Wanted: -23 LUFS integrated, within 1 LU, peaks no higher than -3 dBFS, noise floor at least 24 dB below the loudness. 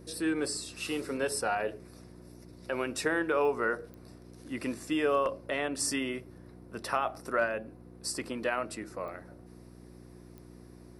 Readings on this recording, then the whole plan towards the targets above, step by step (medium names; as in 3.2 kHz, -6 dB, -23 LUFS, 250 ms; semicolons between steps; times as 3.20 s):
clicks found 4; hum 60 Hz; highest harmonic 360 Hz; hum level -50 dBFS; loudness -32.5 LUFS; peak level -15.5 dBFS; loudness target -23.0 LUFS
-> de-click; de-hum 60 Hz, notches 6; trim +9.5 dB